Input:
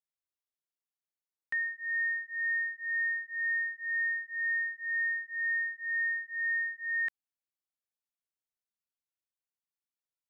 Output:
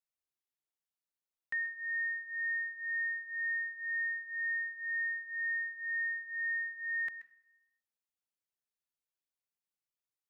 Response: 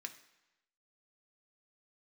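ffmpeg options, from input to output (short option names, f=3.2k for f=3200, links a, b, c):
-filter_complex "[0:a]asplit=2[a][b];[1:a]atrim=start_sample=2205,adelay=130[c];[b][c]afir=irnorm=-1:irlink=0,volume=-11dB[d];[a][d]amix=inputs=2:normalize=0,volume=-3dB"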